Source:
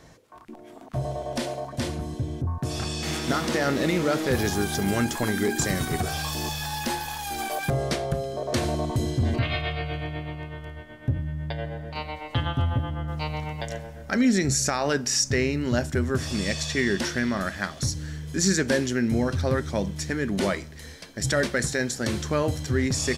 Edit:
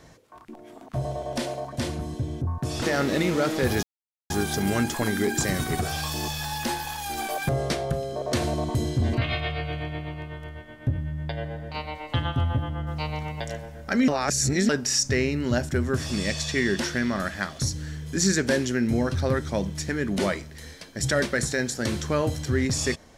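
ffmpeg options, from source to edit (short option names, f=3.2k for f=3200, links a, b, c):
-filter_complex "[0:a]asplit=5[a][b][c][d][e];[a]atrim=end=2.822[f];[b]atrim=start=3.498:end=4.51,asetpts=PTS-STARTPTS,afade=t=out:st=1.008:d=0.004:c=hsin,apad=pad_dur=0.47[g];[c]atrim=start=4.51:end=14.292,asetpts=PTS-STARTPTS,afade=t=in:d=0.004:c=hsin[h];[d]atrim=start=14.288:end=14.902,asetpts=PTS-STARTPTS,areverse[i];[e]atrim=start=14.898[j];[g][h]concat=n=2:v=0:a=1[k];[f][k]acrossfade=d=0.004:c1=hsin:c2=hsin[l];[l][i]acrossfade=d=0.004:c1=hsin:c2=hsin[m];[m][j]acrossfade=d=0.004:c1=hsin:c2=hsin"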